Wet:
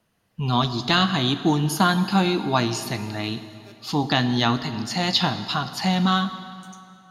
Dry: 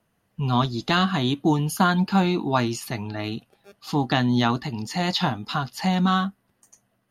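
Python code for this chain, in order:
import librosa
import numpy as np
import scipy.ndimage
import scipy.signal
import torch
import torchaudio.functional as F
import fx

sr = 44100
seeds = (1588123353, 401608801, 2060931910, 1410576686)

y = fx.peak_eq(x, sr, hz=4400.0, db=5.5, octaves=1.5)
y = fx.rev_plate(y, sr, seeds[0], rt60_s=2.6, hf_ratio=0.8, predelay_ms=0, drr_db=10.0)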